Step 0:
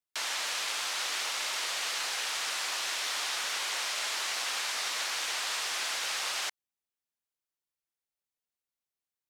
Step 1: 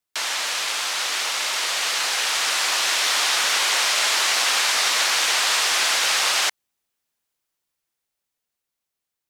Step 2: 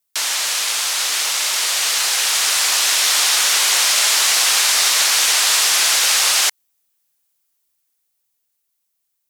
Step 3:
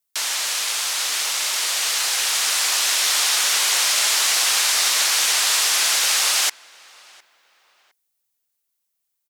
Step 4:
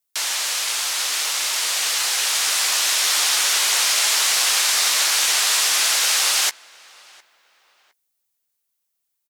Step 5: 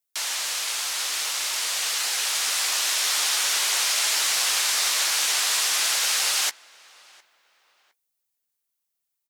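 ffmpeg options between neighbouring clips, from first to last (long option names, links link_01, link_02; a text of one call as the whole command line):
ffmpeg -i in.wav -af "dynaudnorm=framelen=510:gausssize=9:maxgain=5dB,volume=8dB" out.wav
ffmpeg -i in.wav -af "crystalizer=i=2:c=0" out.wav
ffmpeg -i in.wav -filter_complex "[0:a]asplit=2[link_01][link_02];[link_02]adelay=709,lowpass=frequency=2700:poles=1,volume=-23dB,asplit=2[link_03][link_04];[link_04]adelay=709,lowpass=frequency=2700:poles=1,volume=0.35[link_05];[link_01][link_03][link_05]amix=inputs=3:normalize=0,volume=-3.5dB" out.wav
ffmpeg -i in.wav -filter_complex "[0:a]asplit=2[link_01][link_02];[link_02]adelay=14,volume=-12.5dB[link_03];[link_01][link_03]amix=inputs=2:normalize=0" out.wav
ffmpeg -i in.wav -af "flanger=delay=0.4:depth=8.8:regen=-84:speed=0.48:shape=sinusoidal" out.wav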